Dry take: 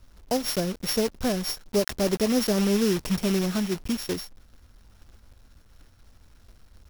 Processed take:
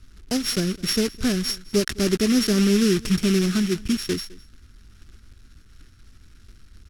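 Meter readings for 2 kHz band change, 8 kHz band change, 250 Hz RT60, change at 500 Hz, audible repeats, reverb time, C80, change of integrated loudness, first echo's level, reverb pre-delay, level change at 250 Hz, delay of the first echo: +5.0 dB, +4.0 dB, none, +1.0 dB, 1, none, none, +4.0 dB, -22.0 dB, none, +5.0 dB, 0.209 s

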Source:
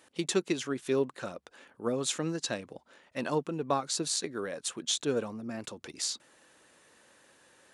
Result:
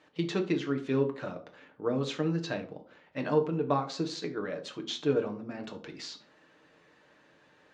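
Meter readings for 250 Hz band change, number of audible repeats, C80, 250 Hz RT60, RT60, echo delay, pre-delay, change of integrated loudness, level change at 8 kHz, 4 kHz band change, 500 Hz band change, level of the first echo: +3.0 dB, none, 18.5 dB, 0.55 s, 0.50 s, none, 6 ms, +0.5 dB, -16.0 dB, -5.0 dB, +2.0 dB, none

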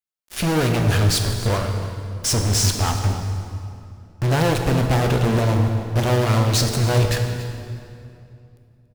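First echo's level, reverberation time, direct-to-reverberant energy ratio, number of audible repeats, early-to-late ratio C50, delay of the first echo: -16.0 dB, 2.6 s, 3.5 dB, 1, 5.0 dB, 0.284 s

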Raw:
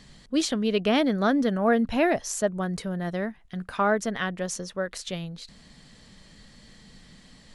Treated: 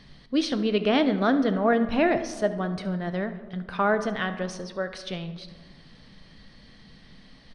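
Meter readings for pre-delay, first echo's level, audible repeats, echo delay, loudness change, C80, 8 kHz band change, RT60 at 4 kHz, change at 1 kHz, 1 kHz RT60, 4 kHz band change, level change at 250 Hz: 3 ms, -17.5 dB, 1, 71 ms, +0.5 dB, 13.5 dB, -10.0 dB, 0.80 s, +0.5 dB, 1.6 s, -0.5 dB, +0.5 dB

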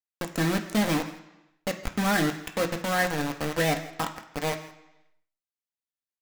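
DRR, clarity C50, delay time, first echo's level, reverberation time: 3.0 dB, 10.5 dB, 0.164 s, -18.5 dB, 0.95 s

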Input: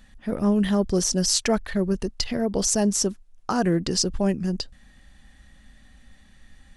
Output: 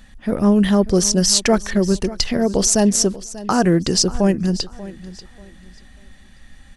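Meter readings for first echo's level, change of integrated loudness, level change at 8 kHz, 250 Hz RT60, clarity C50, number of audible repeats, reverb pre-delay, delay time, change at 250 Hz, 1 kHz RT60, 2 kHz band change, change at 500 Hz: -17.0 dB, +6.5 dB, +6.5 dB, none, none, 2, none, 0.588 s, +6.5 dB, none, +6.5 dB, +6.5 dB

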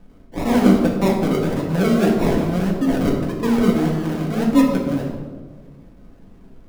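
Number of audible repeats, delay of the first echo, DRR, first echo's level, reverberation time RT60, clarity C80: none, none, -2.5 dB, none, 1.5 s, 6.0 dB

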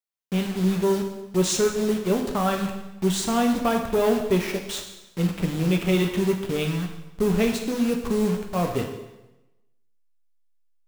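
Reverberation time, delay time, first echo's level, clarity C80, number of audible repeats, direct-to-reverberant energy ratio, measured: 1.0 s, none, none, 8.5 dB, none, 2.5 dB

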